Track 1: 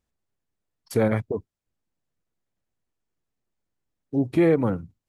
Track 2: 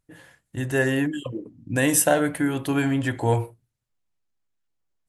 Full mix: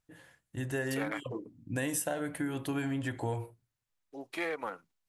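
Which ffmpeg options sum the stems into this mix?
-filter_complex "[0:a]highpass=1000,aeval=exprs='0.141*(cos(1*acos(clip(val(0)/0.141,-1,1)))-cos(1*PI/2))+0.00501*(cos(7*acos(clip(val(0)/0.141,-1,1)))-cos(7*PI/2))':c=same,volume=1.19[s0];[1:a]volume=0.422[s1];[s0][s1]amix=inputs=2:normalize=0,acompressor=threshold=0.0316:ratio=6"

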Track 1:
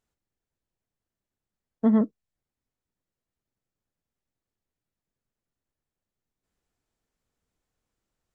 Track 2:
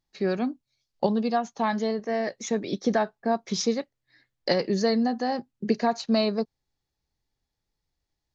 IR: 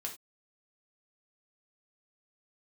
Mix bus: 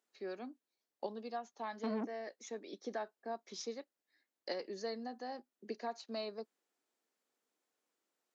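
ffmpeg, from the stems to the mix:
-filter_complex "[0:a]alimiter=limit=0.158:level=0:latency=1,asoftclip=type=tanh:threshold=0.0398,volume=0.841[s0];[1:a]volume=0.158[s1];[s0][s1]amix=inputs=2:normalize=0,highpass=f=270:w=0.5412,highpass=f=270:w=1.3066"

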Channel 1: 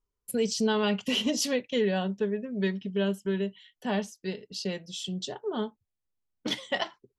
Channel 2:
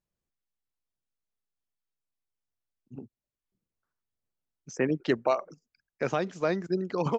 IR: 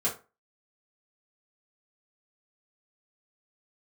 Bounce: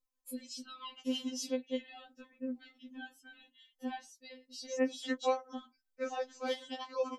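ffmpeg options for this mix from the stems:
-filter_complex "[0:a]acompressor=threshold=0.0224:ratio=2.5,volume=0.562[s0];[1:a]highpass=f=650:p=1,equalizer=f=2000:t=o:w=2.7:g=-8,volume=1.19[s1];[s0][s1]amix=inputs=2:normalize=0,afftfilt=real='re*3.46*eq(mod(b,12),0)':imag='im*3.46*eq(mod(b,12),0)':win_size=2048:overlap=0.75"

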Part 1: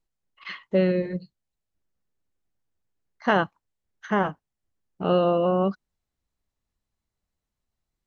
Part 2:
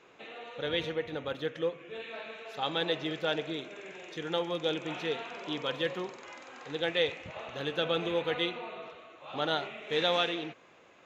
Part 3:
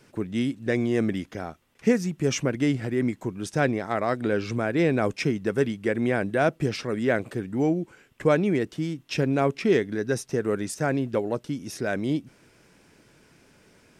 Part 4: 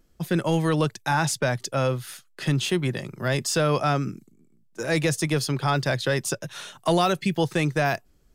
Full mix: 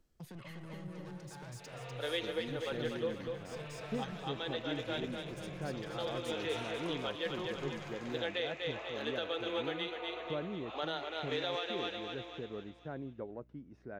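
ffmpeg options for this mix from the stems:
-filter_complex "[0:a]acompressor=threshold=0.0355:ratio=6,asoftclip=type=tanh:threshold=0.0282,volume=1,asplit=3[s0][s1][s2];[s1]volume=0.1[s3];[1:a]highpass=f=310:w=0.5412,highpass=f=310:w=1.3066,adelay=1400,volume=0.668,asplit=2[s4][s5];[s5]volume=0.531[s6];[2:a]lowpass=1400,aeval=exprs='val(0)+0.00398*(sin(2*PI*60*n/s)+sin(2*PI*2*60*n/s)/2+sin(2*PI*3*60*n/s)/3+sin(2*PI*4*60*n/s)/4+sin(2*PI*5*60*n/s)/5)':c=same,adelay=2050,volume=0.133[s7];[3:a]highshelf=f=12000:g=-7,asoftclip=type=tanh:threshold=0.0422,volume=0.251,asplit=2[s8][s9];[s9]volume=0.299[s10];[s2]apad=whole_len=549309[s11];[s4][s11]sidechaincompress=threshold=0.00158:ratio=8:attack=16:release=509[s12];[s0][s8]amix=inputs=2:normalize=0,acrossover=split=160[s13][s14];[s14]acompressor=threshold=0.00316:ratio=10[s15];[s13][s15]amix=inputs=2:normalize=0,alimiter=level_in=5.31:limit=0.0631:level=0:latency=1:release=359,volume=0.188,volume=1[s16];[s3][s6][s10]amix=inputs=3:normalize=0,aecho=0:1:246|492|738|984|1230|1476:1|0.46|0.212|0.0973|0.0448|0.0206[s17];[s12][s7][s16][s17]amix=inputs=4:normalize=0,alimiter=level_in=1.12:limit=0.0631:level=0:latency=1:release=368,volume=0.891"

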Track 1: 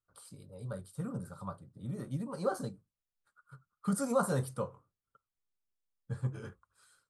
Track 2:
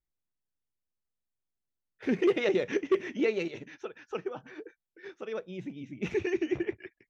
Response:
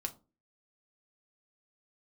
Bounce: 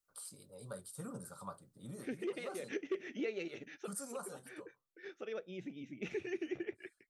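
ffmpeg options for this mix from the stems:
-filter_complex "[0:a]bass=f=250:g=-2,treble=f=4000:g=9,volume=0.794,afade=t=out:st=1.9:d=0.23:silence=0.421697,afade=t=out:st=3.99:d=0.39:silence=0.298538,asplit=2[s0][s1];[1:a]equalizer=f=1000:w=5.7:g=-14,volume=0.708[s2];[s1]apad=whole_len=312916[s3];[s2][s3]sidechaincompress=threshold=0.002:ratio=8:attack=16:release=106[s4];[s0][s4]amix=inputs=2:normalize=0,equalizer=f=60:w=0.62:g=-14.5,acompressor=threshold=0.01:ratio=2"

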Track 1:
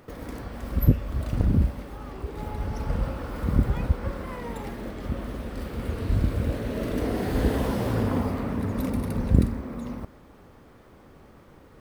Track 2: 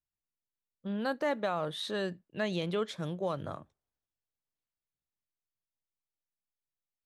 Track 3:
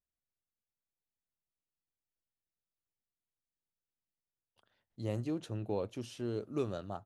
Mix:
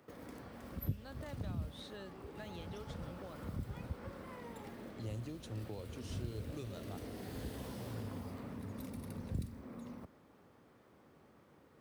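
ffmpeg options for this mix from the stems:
-filter_complex "[0:a]highpass=110,volume=0.266[s0];[1:a]volume=0.2[s1];[2:a]volume=0.794[s2];[s0][s1][s2]amix=inputs=3:normalize=0,acrossover=split=130|3000[s3][s4][s5];[s4]acompressor=threshold=0.00562:ratio=6[s6];[s3][s6][s5]amix=inputs=3:normalize=0"

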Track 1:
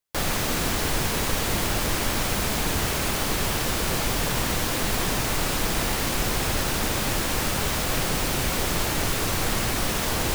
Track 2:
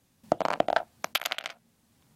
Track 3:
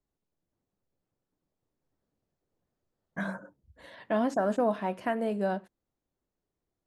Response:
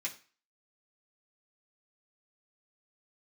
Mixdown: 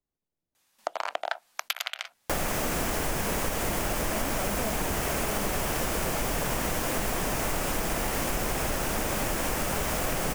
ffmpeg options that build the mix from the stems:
-filter_complex "[0:a]equalizer=f=100:t=o:w=0.67:g=-5,equalizer=f=630:t=o:w=0.67:g=4,equalizer=f=4000:t=o:w=0.67:g=-8,adelay=2150,volume=1.26[s0];[1:a]highpass=870,adelay=550,volume=1.26[s1];[2:a]volume=0.596[s2];[s0][s1][s2]amix=inputs=3:normalize=0,acompressor=threshold=0.0562:ratio=6"

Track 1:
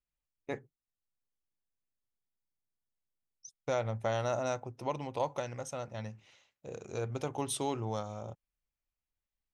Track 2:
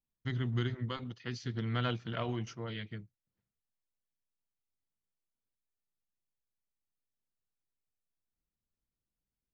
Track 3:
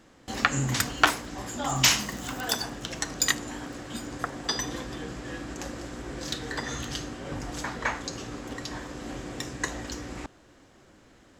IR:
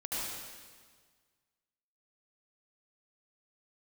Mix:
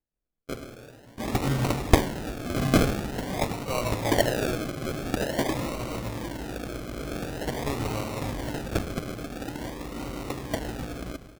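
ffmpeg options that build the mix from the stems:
-filter_complex "[0:a]lowpass=8400,acrusher=samples=19:mix=1:aa=0.000001,volume=1,asplit=3[s0][s1][s2];[s0]atrim=end=6.78,asetpts=PTS-STARTPTS,afade=t=out:st=6.776:d=0.004:c=hsin[s3];[s1]atrim=start=6.78:end=7.66,asetpts=PTS-STARTPTS,volume=0[s4];[s2]atrim=start=7.66,asetpts=PTS-STARTPTS,afade=t=in:d=0.004:c=hsin[s5];[s3][s4][s5]concat=n=3:v=0:a=1,asplit=2[s6][s7];[s7]volume=0.596[s8];[1:a]acompressor=threshold=0.0141:ratio=6,adelay=250,volume=0.211[s9];[2:a]adelay=900,volume=1.12,asplit=2[s10][s11];[s11]volume=0.188[s12];[3:a]atrim=start_sample=2205[s13];[s8][s12]amix=inputs=2:normalize=0[s14];[s14][s13]afir=irnorm=-1:irlink=0[s15];[s6][s9][s10][s15]amix=inputs=4:normalize=0,acrusher=samples=37:mix=1:aa=0.000001:lfo=1:lforange=22.2:lforate=0.47"

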